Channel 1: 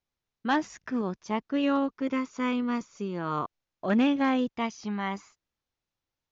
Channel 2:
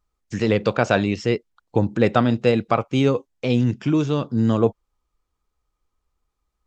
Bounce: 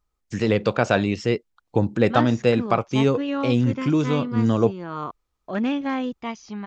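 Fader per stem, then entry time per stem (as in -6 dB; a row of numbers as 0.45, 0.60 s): -0.5, -1.0 dB; 1.65, 0.00 s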